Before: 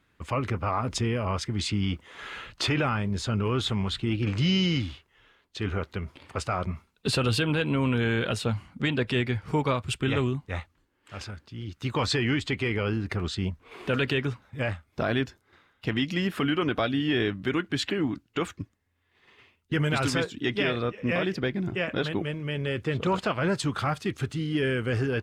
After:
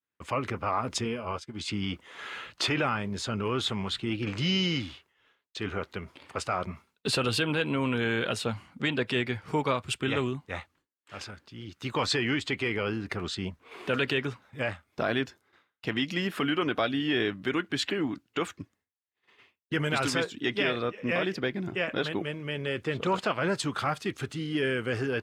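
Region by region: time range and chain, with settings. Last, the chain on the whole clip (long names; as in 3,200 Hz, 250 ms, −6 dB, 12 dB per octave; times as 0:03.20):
0:01.04–0:01.68: notch filter 1,900 Hz, Q 7 + double-tracking delay 13 ms −8 dB + expander for the loud parts 2.5 to 1, over −40 dBFS
whole clip: downward expander −53 dBFS; high-pass filter 250 Hz 6 dB per octave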